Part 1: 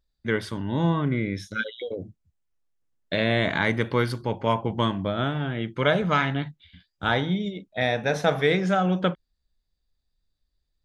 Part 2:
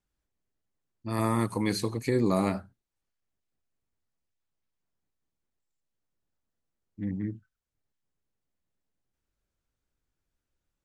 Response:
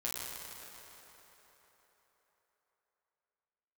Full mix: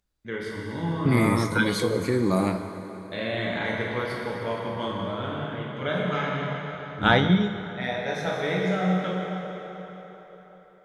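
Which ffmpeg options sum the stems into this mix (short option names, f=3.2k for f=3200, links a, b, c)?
-filter_complex "[0:a]volume=2.5dB,asplit=2[a][b];[b]volume=-10dB[c];[1:a]volume=-0.5dB,asplit=3[d][e][f];[e]volume=-7.5dB[g];[f]apad=whole_len=478464[h];[a][h]sidechaingate=range=-33dB:threshold=-49dB:ratio=16:detection=peak[i];[2:a]atrim=start_sample=2205[j];[c][g]amix=inputs=2:normalize=0[k];[k][j]afir=irnorm=-1:irlink=0[l];[i][d][l]amix=inputs=3:normalize=0"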